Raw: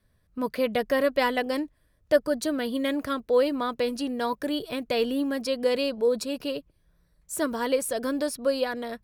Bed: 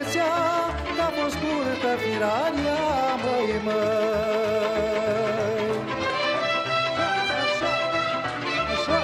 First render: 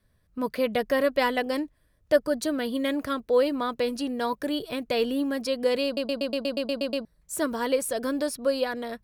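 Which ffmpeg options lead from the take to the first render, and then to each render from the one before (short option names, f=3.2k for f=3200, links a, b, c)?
-filter_complex "[0:a]asplit=11[a][b][c][d][e][f][g][h][i][j][k];[a]atrim=end=5.972[l];[b]atrim=start=5.848:end=5.972[m];[c]atrim=start=5.848:end=5.972[n];[d]atrim=start=5.848:end=5.972[o];[e]atrim=start=5.848:end=5.972[p];[f]atrim=start=5.848:end=5.972[q];[g]atrim=start=5.848:end=5.972[r];[h]atrim=start=5.848:end=5.972[s];[i]atrim=start=5.848:end=5.972[t];[j]atrim=start=5.848:end=5.972[u];[k]atrim=start=7.048[v];[l][m]acrossfade=d=0.004:c1=hsin:c2=hsin[w];[w][n]acrossfade=d=0.004:c1=hsin:c2=hsin[x];[x][o]acrossfade=d=0.004:c1=hsin:c2=hsin[y];[y][p]acrossfade=d=0.004:c1=hsin:c2=hsin[z];[z][q]acrossfade=d=0.004:c1=hsin:c2=hsin[aa];[aa][r]acrossfade=d=0.004:c1=hsin:c2=hsin[ab];[ab][s]acrossfade=d=0.004:c1=hsin:c2=hsin[ac];[ac][t]acrossfade=d=0.004:c1=hsin:c2=hsin[ad];[ad][u]acrossfade=d=0.004:c1=hsin:c2=hsin[ae];[ae][v]acrossfade=d=0.004:c1=hsin:c2=hsin"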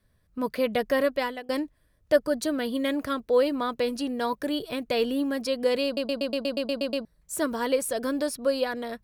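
-filter_complex "[0:a]asplit=2[a][b];[a]atrim=end=1.49,asetpts=PTS-STARTPTS,afade=t=out:st=1.02:d=0.47:silence=0.0841395[c];[b]atrim=start=1.49,asetpts=PTS-STARTPTS,afade=t=in:d=0.004:c=hsin:silence=0.0841395[d];[c][d]concat=n=2:v=0:a=1"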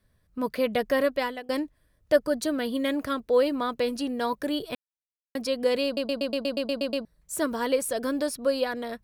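-filter_complex "[0:a]asplit=3[a][b][c];[a]atrim=end=4.75,asetpts=PTS-STARTPTS,afade=t=out:st=4.746:d=0.004:c=hsin[d];[b]atrim=start=4.75:end=5.35,asetpts=PTS-STARTPTS,volume=0[e];[c]atrim=start=5.35,asetpts=PTS-STARTPTS,afade=t=in:d=0.004:c=hsin[f];[d][e][f]concat=n=3:v=0:a=1"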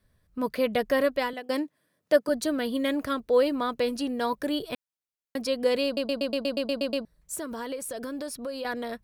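-filter_complex "[0:a]asettb=1/sr,asplit=3[a][b][c];[a]atrim=end=1.334[d];[b]atrim=start=1.33:end=2.29,asetpts=PTS-STARTPTS,afade=t=in:d=0.004:c=qsin,afade=t=out:st=0.956:d=0.004:c=qsin,highpass=f=160:w=0.5412,highpass=f=160:w=1.3066[e];[c]atrim=start=2.286[f];[d][e]acrossfade=d=0.004:c1=hsin:c2=qsin[g];[g][f]acrossfade=d=0.004:c1=qsin:c2=hsin,asettb=1/sr,asplit=3[h][i][j];[h]atrim=end=7.354[k];[i]atrim=start=7.35:end=8.65,asetpts=PTS-STARTPTS,afade=t=in:d=0.004:c=qsin,afade=t=out:st=1.296:d=0.004:c=qsin,acompressor=threshold=-32dB:ratio=4:attack=3.2:release=140:knee=1:detection=peak[l];[j]atrim=start=8.646[m];[k][l]acrossfade=d=0.004:c1=hsin:c2=qsin[n];[n][m]acrossfade=d=0.004:c1=qsin:c2=hsin"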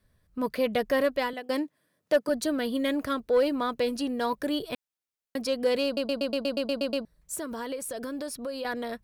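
-af "asoftclip=type=tanh:threshold=-14.5dB"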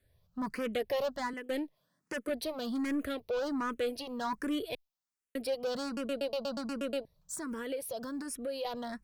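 -filter_complex "[0:a]asoftclip=type=tanh:threshold=-26.5dB,asplit=2[a][b];[b]afreqshift=1.3[c];[a][c]amix=inputs=2:normalize=1"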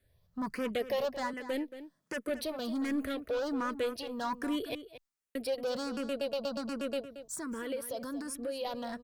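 -filter_complex "[0:a]asplit=2[a][b];[b]adelay=227.4,volume=-12dB,highshelf=f=4k:g=-5.12[c];[a][c]amix=inputs=2:normalize=0"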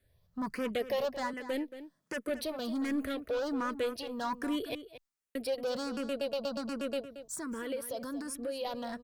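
-af anull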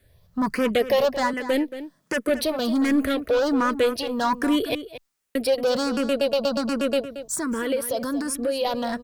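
-af "volume=12dB"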